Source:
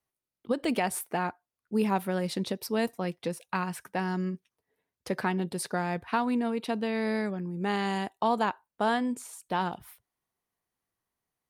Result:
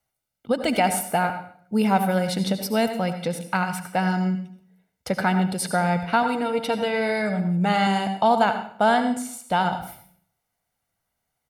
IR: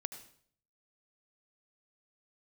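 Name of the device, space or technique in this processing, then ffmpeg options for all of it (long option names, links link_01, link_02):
microphone above a desk: -filter_complex "[0:a]aecho=1:1:1.4:0.55[link_01];[1:a]atrim=start_sample=2205[link_02];[link_01][link_02]afir=irnorm=-1:irlink=0,asettb=1/sr,asplit=3[link_03][link_04][link_05];[link_03]atrim=end=6.224[link_06];[link_04]atrim=start=6.22:end=7.87,asetpts=PTS-STARTPTS,afade=type=in:duration=0.004:curve=qsin,afade=type=out:start_time=1.646:duration=0.004:curve=qsin,aecho=1:1:6.5:0.58,atrim=end_sample=72765[link_07];[link_05]atrim=start=7.866[link_08];[link_06][link_07]acrossfade=duration=0.004:curve1=hsin:curve2=qsin[link_09];[link_09][link_08]acrossfade=duration=0.004:curve1=qsin:curve2=hsin,volume=8dB"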